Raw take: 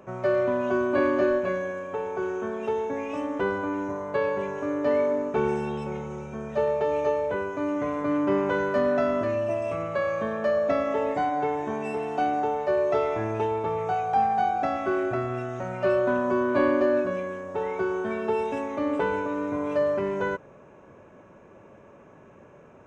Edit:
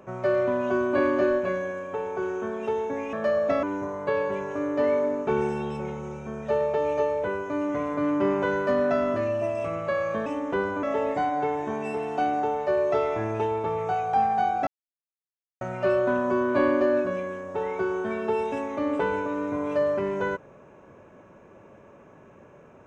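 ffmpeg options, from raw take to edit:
-filter_complex "[0:a]asplit=7[s0][s1][s2][s3][s4][s5][s6];[s0]atrim=end=3.132[s7];[s1]atrim=start=10.328:end=10.832[s8];[s2]atrim=start=3.698:end=10.332[s9];[s3]atrim=start=3.128:end=3.702[s10];[s4]atrim=start=10.828:end=14.67,asetpts=PTS-STARTPTS,afade=t=out:st=3.838:d=0.004:c=hsin[s11];[s5]atrim=start=14.67:end=15.61,asetpts=PTS-STARTPTS,volume=0[s12];[s6]atrim=start=15.61,asetpts=PTS-STARTPTS,afade=t=in:d=0.004:c=hsin[s13];[s7][s8]acrossfade=d=0.004:c1=hsin:c2=hsin[s14];[s14][s9]acrossfade=d=0.004:c1=hsin:c2=hsin[s15];[s15][s10]acrossfade=d=0.004:c1=hsin:c2=hsin[s16];[s11][s12][s13]concat=n=3:v=0:a=1[s17];[s16][s17]acrossfade=d=0.004:c1=hsin:c2=hsin"

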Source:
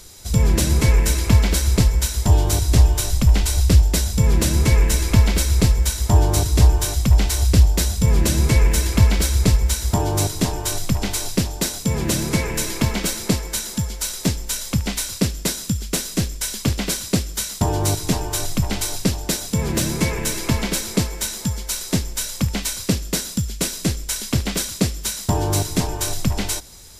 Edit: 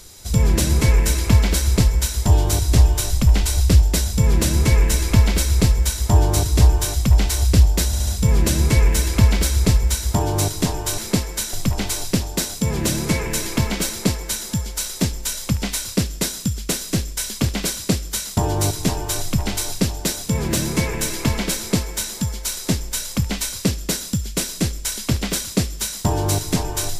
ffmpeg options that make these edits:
-filter_complex "[0:a]asplit=6[s0][s1][s2][s3][s4][s5];[s0]atrim=end=7.932[s6];[s1]atrim=start=7.858:end=7.932[s7];[s2]atrim=start=7.858:end=7.932[s8];[s3]atrim=start=7.858:end=10.772[s9];[s4]atrim=start=13.138:end=13.692[s10];[s5]atrim=start=10.768[s11];[s6][s7]acrossfade=d=0.004:c1=hsin:c2=hsin[s12];[s12][s8]acrossfade=d=0.004:c1=hsin:c2=hsin[s13];[s13][s9]acrossfade=d=0.004:c1=hsin:c2=hsin[s14];[s14][s10]acrossfade=d=0.004:c1=hsin:c2=hsin[s15];[s15][s11]acrossfade=d=0.004:c1=hsin:c2=hsin"

